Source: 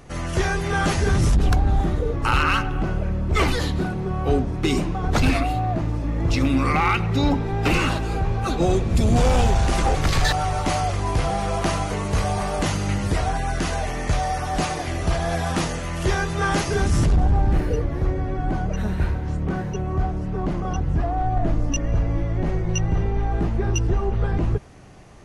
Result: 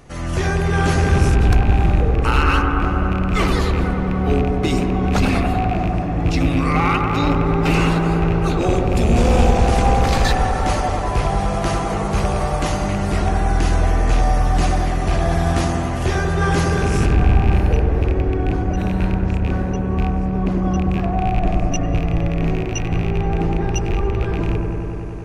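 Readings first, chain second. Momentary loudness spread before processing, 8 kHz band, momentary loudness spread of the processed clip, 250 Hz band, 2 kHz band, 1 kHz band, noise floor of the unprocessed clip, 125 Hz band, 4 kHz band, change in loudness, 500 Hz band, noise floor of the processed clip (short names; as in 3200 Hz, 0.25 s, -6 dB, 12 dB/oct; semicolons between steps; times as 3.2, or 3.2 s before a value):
6 LU, 0.0 dB, 5 LU, +5.0 dB, +2.5 dB, +3.5 dB, -28 dBFS, +4.0 dB, +0.5 dB, +4.0 dB, +4.5 dB, -22 dBFS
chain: rattling part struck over -19 dBFS, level -20 dBFS; dark delay 96 ms, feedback 85%, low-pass 1400 Hz, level -3.5 dB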